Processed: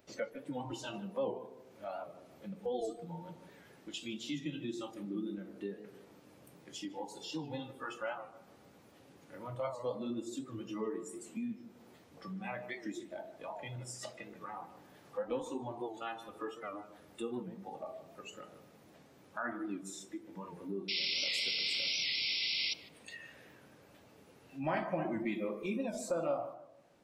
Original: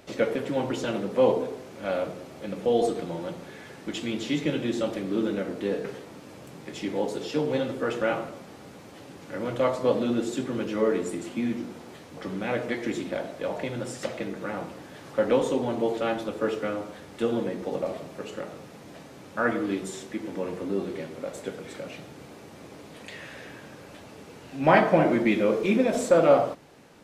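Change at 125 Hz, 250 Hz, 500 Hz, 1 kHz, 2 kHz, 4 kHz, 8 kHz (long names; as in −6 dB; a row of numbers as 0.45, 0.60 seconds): −12.5, −13.0, −15.5, −13.0, −9.0, +2.5, −6.5 decibels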